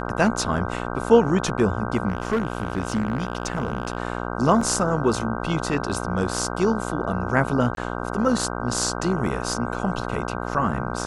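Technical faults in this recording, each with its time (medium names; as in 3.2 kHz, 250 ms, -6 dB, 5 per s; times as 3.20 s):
buzz 60 Hz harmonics 26 -29 dBFS
2.08–3.97 s: clipped -17.5 dBFS
4.61 s: dropout 3.8 ms
7.75–7.77 s: dropout 22 ms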